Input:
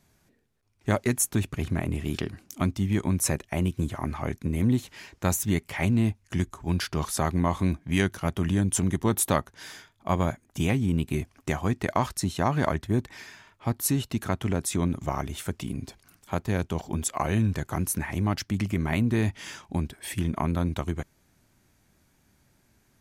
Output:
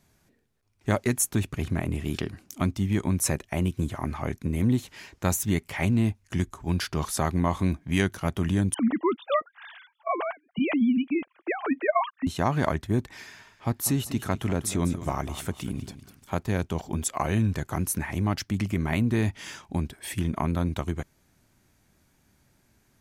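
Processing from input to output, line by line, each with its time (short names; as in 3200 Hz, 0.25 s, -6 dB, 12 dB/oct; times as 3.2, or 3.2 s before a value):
8.74–12.27 sine-wave speech
13.13–16.43 feedback echo 0.197 s, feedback 26%, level -13 dB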